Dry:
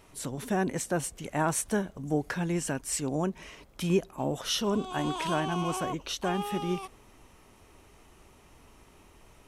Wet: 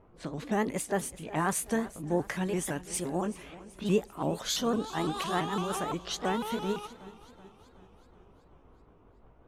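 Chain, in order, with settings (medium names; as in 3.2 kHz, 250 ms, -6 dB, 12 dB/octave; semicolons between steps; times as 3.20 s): sawtooth pitch modulation +3.5 st, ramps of 169 ms; level-controlled noise filter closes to 850 Hz, open at -29.5 dBFS; modulated delay 379 ms, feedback 55%, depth 62 cents, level -18 dB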